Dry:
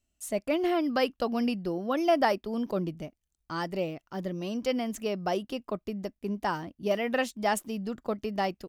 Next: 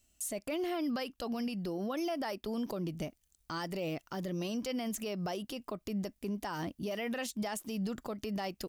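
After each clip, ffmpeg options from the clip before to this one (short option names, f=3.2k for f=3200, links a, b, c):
-af "highshelf=f=3.6k:g=9,acompressor=threshold=-33dB:ratio=4,alimiter=level_in=9.5dB:limit=-24dB:level=0:latency=1:release=57,volume=-9.5dB,volume=5dB"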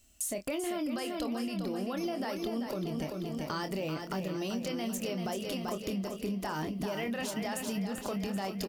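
-filter_complex "[0:a]asplit=2[a][b];[b]adelay=26,volume=-8.5dB[c];[a][c]amix=inputs=2:normalize=0,asplit=2[d][e];[e]aecho=0:1:388|776|1164|1552|1940|2328|2716:0.473|0.26|0.143|0.0787|0.0433|0.0238|0.0131[f];[d][f]amix=inputs=2:normalize=0,acompressor=threshold=-38dB:ratio=6,volume=6.5dB"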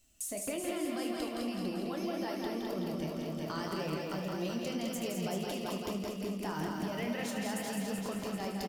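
-filter_complex "[0:a]asplit=2[a][b];[b]aecho=0:1:208:0.596[c];[a][c]amix=inputs=2:normalize=0,flanger=delay=5.3:depth=7.4:regen=56:speed=1.8:shape=triangular,asplit=2[d][e];[e]aecho=0:1:75.8|166.2:0.282|0.562[f];[d][f]amix=inputs=2:normalize=0"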